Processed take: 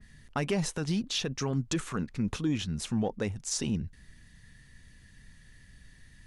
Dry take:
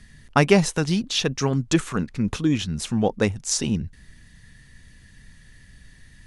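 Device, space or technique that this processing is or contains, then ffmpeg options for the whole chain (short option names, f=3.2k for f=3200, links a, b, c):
soft clipper into limiter: -af "asoftclip=type=tanh:threshold=-6.5dB,alimiter=limit=-15dB:level=0:latency=1:release=60,adynamicequalizer=threshold=0.0112:dfrequency=2500:dqfactor=0.7:tfrequency=2500:tqfactor=0.7:attack=5:release=100:ratio=0.375:range=1.5:mode=cutabove:tftype=highshelf,volume=-5.5dB"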